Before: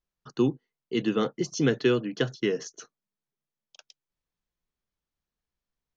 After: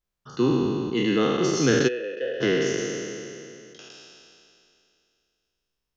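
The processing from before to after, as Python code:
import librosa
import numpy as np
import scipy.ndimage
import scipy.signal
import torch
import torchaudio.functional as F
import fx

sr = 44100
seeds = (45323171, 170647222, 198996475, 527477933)

y = fx.spec_trails(x, sr, decay_s=2.67)
y = fx.vowel_filter(y, sr, vowel='e', at=(1.87, 2.4), fade=0.02)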